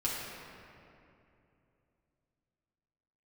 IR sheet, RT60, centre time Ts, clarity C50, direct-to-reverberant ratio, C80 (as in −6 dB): 2.8 s, 138 ms, −1.0 dB, −7.0 dB, 0.5 dB